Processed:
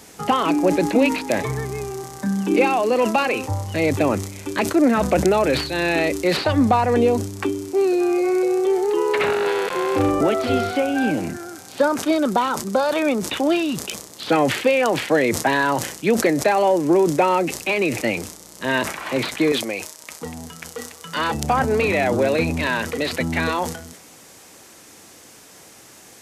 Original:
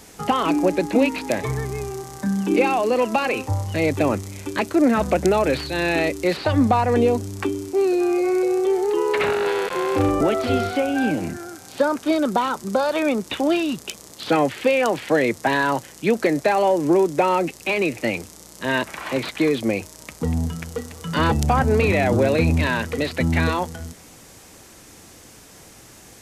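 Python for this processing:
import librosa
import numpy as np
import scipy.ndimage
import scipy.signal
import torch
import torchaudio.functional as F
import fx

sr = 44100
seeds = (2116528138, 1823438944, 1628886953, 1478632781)

y = fx.highpass(x, sr, hz=fx.steps((0.0, 96.0), (19.52, 800.0), (21.34, 260.0)), slope=6)
y = fx.sustainer(y, sr, db_per_s=83.0)
y = F.gain(torch.from_numpy(y), 1.0).numpy()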